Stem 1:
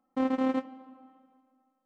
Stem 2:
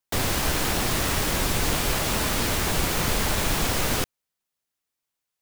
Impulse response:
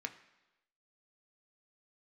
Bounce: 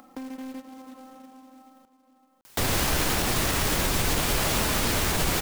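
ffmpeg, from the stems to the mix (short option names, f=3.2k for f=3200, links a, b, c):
-filter_complex "[0:a]acrossover=split=160[a][b];[b]acompressor=threshold=-28dB:ratio=6[c];[a][c]amix=inputs=2:normalize=0,acrusher=bits=5:mode=log:mix=0:aa=0.000001,asoftclip=type=tanh:threshold=-31dB,volume=-9dB,asplit=3[d][e][f];[e]volume=-12.5dB[g];[f]volume=-21.5dB[h];[1:a]alimiter=limit=-15dB:level=0:latency=1:release=39,adelay=2450,volume=0.5dB[i];[2:a]atrim=start_sample=2205[j];[g][j]afir=irnorm=-1:irlink=0[k];[h]aecho=0:1:559:1[l];[d][i][k][l]amix=inputs=4:normalize=0,acompressor=mode=upward:threshold=-30dB:ratio=2.5,acrusher=bits=3:mode=log:mix=0:aa=0.000001"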